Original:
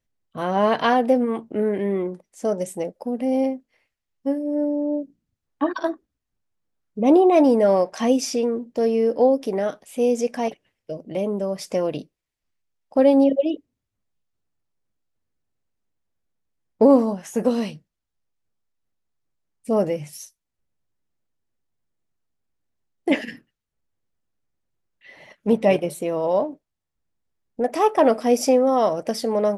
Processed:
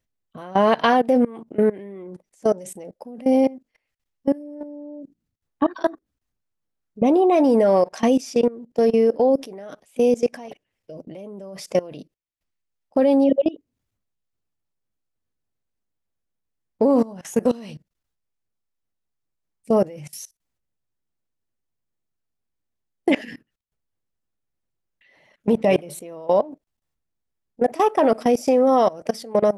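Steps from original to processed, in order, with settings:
output level in coarse steps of 21 dB
level +5.5 dB

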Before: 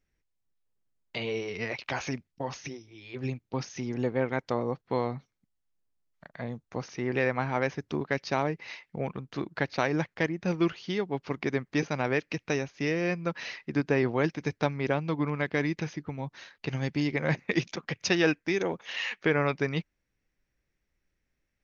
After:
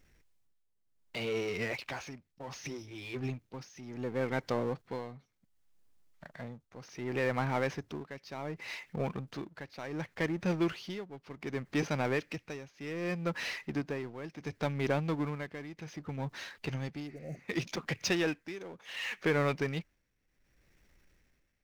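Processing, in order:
power curve on the samples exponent 0.7
amplitude tremolo 0.67 Hz, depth 80%
healed spectral selection 0:17.10–0:17.36, 780–5,600 Hz after
level −6 dB

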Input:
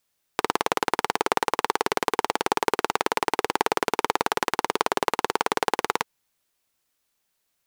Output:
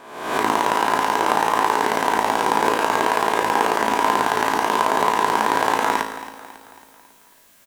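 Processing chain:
peak hold with a rise ahead of every peak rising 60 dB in 0.84 s
parametric band 4,600 Hz −3 dB 0.61 octaves
reversed playback
upward compression, threshold −35 dBFS
reversed playback
tuned comb filter 54 Hz, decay 0.83 s, harmonics all, mix 80%
hollow resonant body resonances 240/640/1,000/1,600 Hz, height 7 dB, ringing for 25 ms
on a send: repeating echo 274 ms, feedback 50%, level −14.5 dB
on the sum: level +7.5 dB

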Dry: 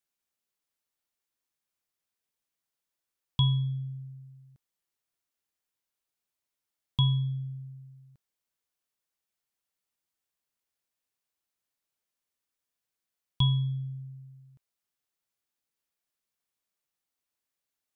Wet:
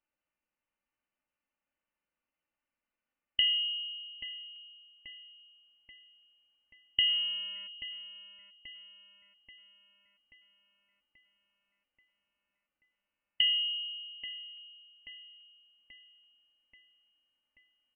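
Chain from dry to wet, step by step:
notch filter 1,300 Hz, Q 29
comb filter 3.3 ms, depth 53%
0:07.07–0:07.66: hum with harmonics 400 Hz, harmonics 27, −57 dBFS −5 dB per octave
on a send: feedback echo with a high-pass in the loop 833 ms, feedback 62%, high-pass 160 Hz, level −10 dB
on the sum: voice inversion scrambler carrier 3,000 Hz
level +1.5 dB

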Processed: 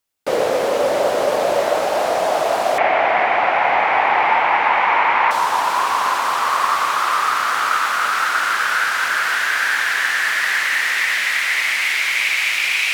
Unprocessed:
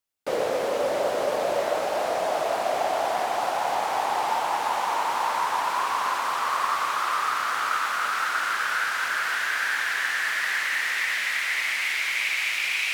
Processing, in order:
0:02.78–0:05.31: low-pass with resonance 2,200 Hz, resonance Q 4
level +7.5 dB

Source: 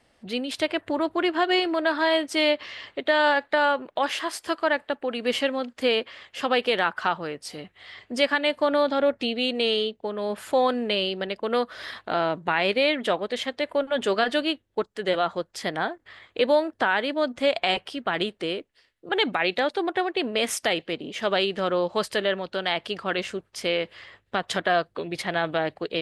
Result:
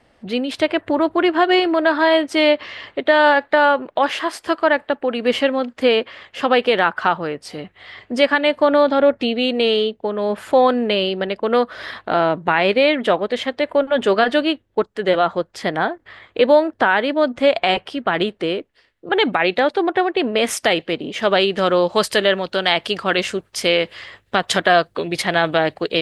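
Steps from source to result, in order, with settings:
high-shelf EQ 3,700 Hz −10 dB, from 0:20.45 −4.5 dB, from 0:21.57 +3.5 dB
level +8 dB

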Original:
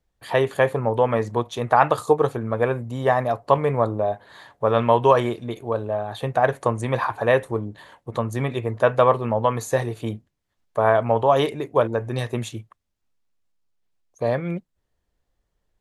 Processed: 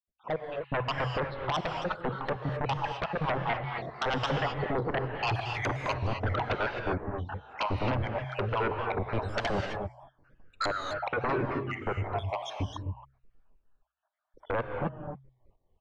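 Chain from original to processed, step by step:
time-frequency cells dropped at random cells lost 71%
source passing by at 0:05.38, 46 m/s, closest 5.3 metres
camcorder AGC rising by 23 dB per second
low-pass filter 1,200 Hz 12 dB per octave
hum removal 64.72 Hz, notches 2
in parallel at −2 dB: downward compressor, threshold −48 dBFS, peak gain reduction 18.5 dB
on the sum: brickwall limiter −28.5 dBFS, peak gain reduction 11.5 dB
sine wavefolder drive 10 dB, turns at −28.5 dBFS
reverb whose tail is shaped and stops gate 290 ms rising, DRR 4 dB
pitch modulation by a square or saw wave saw down 3.3 Hz, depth 100 cents
level +3 dB

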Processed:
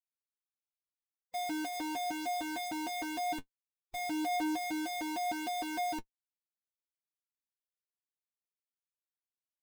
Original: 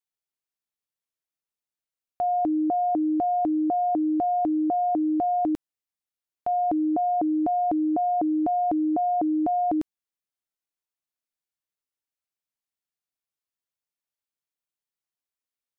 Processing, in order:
reverb reduction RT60 0.62 s
comb filter 4 ms, depth 60%
comparator with hysteresis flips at −34 dBFS
phase-vocoder stretch with locked phases 0.61×
flanger 0.18 Hz, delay 8.1 ms, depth 3.9 ms, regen +39%
level −5.5 dB

